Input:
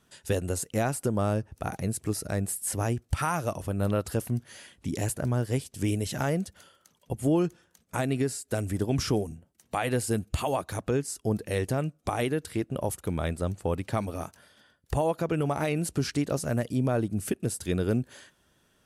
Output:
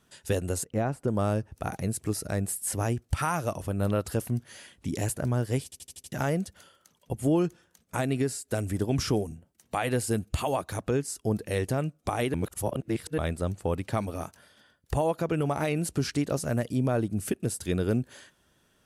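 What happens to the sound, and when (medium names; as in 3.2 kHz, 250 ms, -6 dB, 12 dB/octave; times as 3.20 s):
0.64–1.08 s: low-pass 1.1 kHz 6 dB/octave
5.64 s: stutter in place 0.08 s, 6 plays
12.34–13.18 s: reverse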